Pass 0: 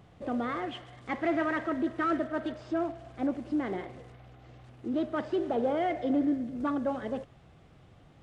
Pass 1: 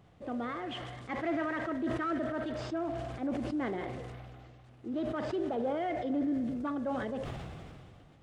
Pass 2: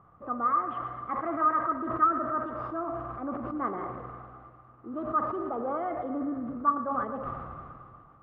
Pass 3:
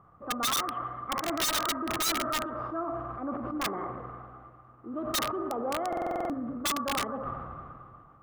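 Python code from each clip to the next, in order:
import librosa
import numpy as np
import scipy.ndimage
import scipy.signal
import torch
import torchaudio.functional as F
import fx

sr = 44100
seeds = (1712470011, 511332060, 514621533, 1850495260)

y1 = fx.sustainer(x, sr, db_per_s=24.0)
y1 = y1 * 10.0 ** (-5.0 / 20.0)
y2 = fx.lowpass_res(y1, sr, hz=1200.0, q=13.0)
y2 = fx.echo_feedback(y2, sr, ms=115, feedback_pct=60, wet_db=-12.5)
y2 = y2 * 10.0 ** (-2.5 / 20.0)
y3 = (np.mod(10.0 ** (23.0 / 20.0) * y2 + 1.0, 2.0) - 1.0) / 10.0 ** (23.0 / 20.0)
y3 = fx.buffer_glitch(y3, sr, at_s=(5.88,), block=2048, repeats=8)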